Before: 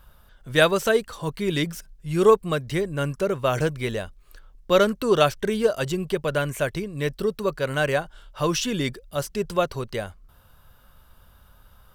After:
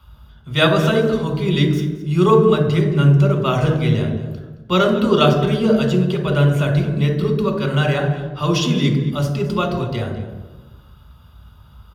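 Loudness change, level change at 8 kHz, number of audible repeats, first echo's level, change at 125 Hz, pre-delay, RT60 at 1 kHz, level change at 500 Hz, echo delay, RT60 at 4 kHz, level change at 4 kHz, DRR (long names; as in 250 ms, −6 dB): +6.5 dB, −2.5 dB, 1, −16.0 dB, +14.0 dB, 3 ms, 1.0 s, +3.5 dB, 220 ms, 0.75 s, +6.0 dB, 2.0 dB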